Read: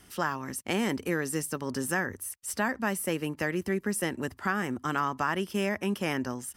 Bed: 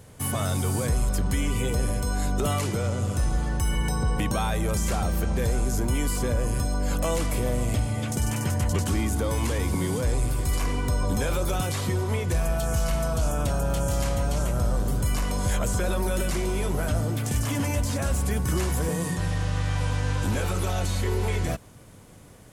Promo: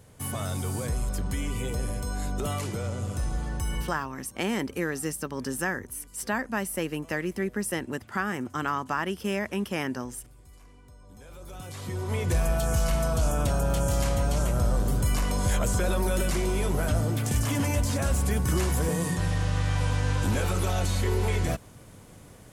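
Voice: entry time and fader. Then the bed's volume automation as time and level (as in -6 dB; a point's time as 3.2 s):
3.70 s, 0.0 dB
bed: 3.8 s -5 dB
4.09 s -27 dB
11.04 s -27 dB
12.26 s 0 dB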